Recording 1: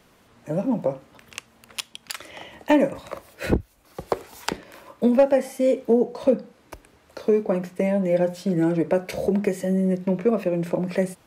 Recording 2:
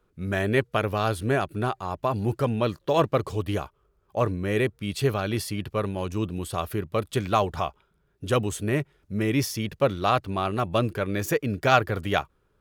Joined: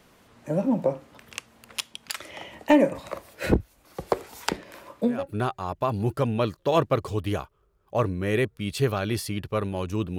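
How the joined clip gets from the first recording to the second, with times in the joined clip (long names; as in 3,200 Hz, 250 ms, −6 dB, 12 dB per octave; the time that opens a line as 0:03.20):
recording 1
0:05.17: continue with recording 2 from 0:01.39, crossfade 0.38 s quadratic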